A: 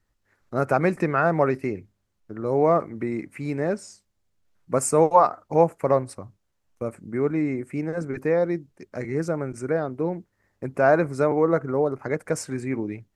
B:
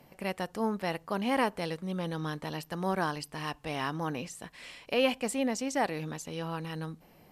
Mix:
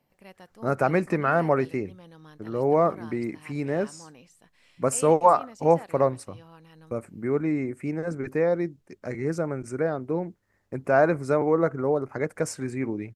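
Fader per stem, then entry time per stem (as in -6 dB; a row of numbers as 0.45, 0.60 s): -1.5, -14.5 dB; 0.10, 0.00 s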